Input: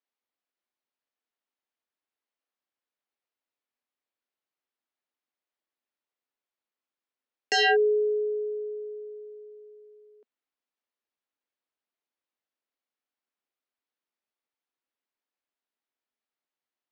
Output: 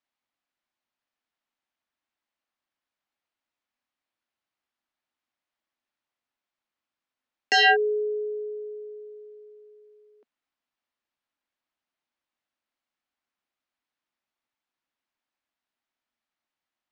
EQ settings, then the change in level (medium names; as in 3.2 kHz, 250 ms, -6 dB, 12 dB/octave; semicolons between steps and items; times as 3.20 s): distance through air 90 m; peaking EQ 440 Hz -8.5 dB 0.58 oct; +6.0 dB